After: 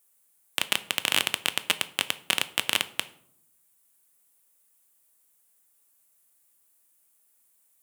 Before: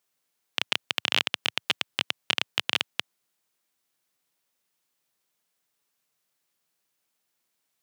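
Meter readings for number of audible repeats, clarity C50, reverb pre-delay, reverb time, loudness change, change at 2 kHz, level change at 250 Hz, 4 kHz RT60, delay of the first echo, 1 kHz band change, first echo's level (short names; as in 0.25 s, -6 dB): none, 17.0 dB, 3 ms, 0.70 s, +1.0 dB, +1.0 dB, +1.5 dB, 0.40 s, none, +1.5 dB, none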